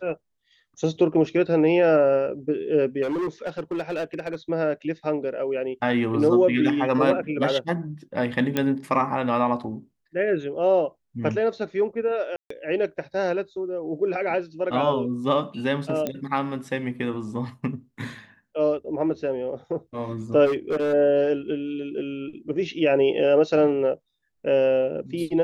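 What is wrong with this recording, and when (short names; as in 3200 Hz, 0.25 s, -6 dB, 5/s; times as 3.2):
3.02–4.36 clipped -23.5 dBFS
8.57 pop -9 dBFS
12.36–12.5 gap 0.144 s
16.07 pop -13 dBFS
20.45–20.94 clipped -20.5 dBFS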